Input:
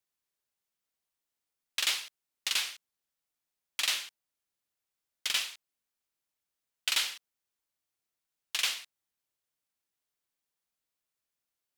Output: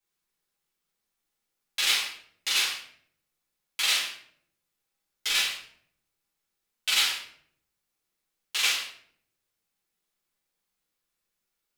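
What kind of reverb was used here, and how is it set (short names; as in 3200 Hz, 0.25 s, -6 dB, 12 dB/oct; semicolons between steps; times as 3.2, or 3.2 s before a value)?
shoebox room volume 97 m³, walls mixed, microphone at 2.1 m; gain -2.5 dB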